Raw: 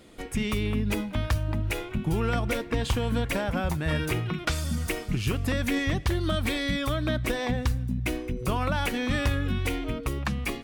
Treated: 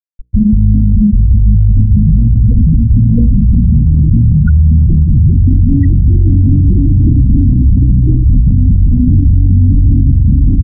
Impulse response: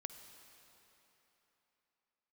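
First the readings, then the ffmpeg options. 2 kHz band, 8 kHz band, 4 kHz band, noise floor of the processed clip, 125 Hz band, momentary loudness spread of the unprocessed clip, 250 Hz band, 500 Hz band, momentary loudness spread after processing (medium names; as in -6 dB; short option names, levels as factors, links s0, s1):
under -10 dB, under -40 dB, under -40 dB, -10 dBFS, +22.0 dB, 4 LU, +17.0 dB, no reading, 1 LU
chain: -af "highshelf=f=5500:g=-4.5,aecho=1:1:600|1020|1314|1520|1664:0.631|0.398|0.251|0.158|0.1,aresample=16000,volume=11.9,asoftclip=hard,volume=0.0841,aresample=44100,asubboost=boost=5.5:cutoff=210,afftfilt=real='re*gte(hypot(re,im),0.316)':imag='im*gte(hypot(re,im),0.316)':win_size=1024:overlap=0.75,bandreject=f=60:t=h:w=6,bandreject=f=120:t=h:w=6,bandreject=f=180:t=h:w=6,bandreject=f=240:t=h:w=6,bandreject=f=300:t=h:w=6,bandreject=f=360:t=h:w=6,bandreject=f=420:t=h:w=6,bandreject=f=480:t=h:w=6,areverse,acompressor=threshold=0.0562:ratio=8,areverse,alimiter=level_in=28.2:limit=0.891:release=50:level=0:latency=1,volume=0.891"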